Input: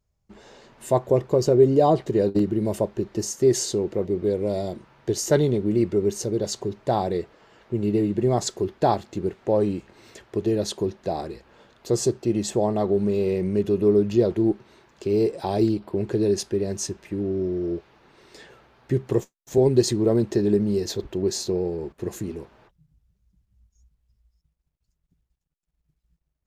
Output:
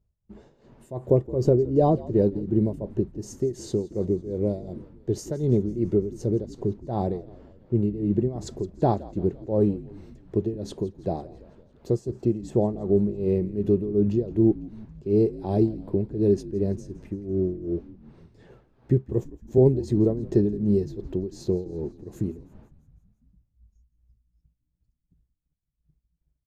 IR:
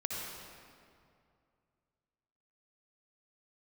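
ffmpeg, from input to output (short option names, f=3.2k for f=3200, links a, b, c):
-filter_complex "[0:a]tiltshelf=f=670:g=9,tremolo=f=2.7:d=0.84,asplit=7[a][b][c][d][e][f][g];[b]adelay=167,afreqshift=-59,volume=-19dB[h];[c]adelay=334,afreqshift=-118,volume=-23dB[i];[d]adelay=501,afreqshift=-177,volume=-27dB[j];[e]adelay=668,afreqshift=-236,volume=-31dB[k];[f]adelay=835,afreqshift=-295,volume=-35.1dB[l];[g]adelay=1002,afreqshift=-354,volume=-39.1dB[m];[a][h][i][j][k][l][m]amix=inputs=7:normalize=0,volume=-3dB"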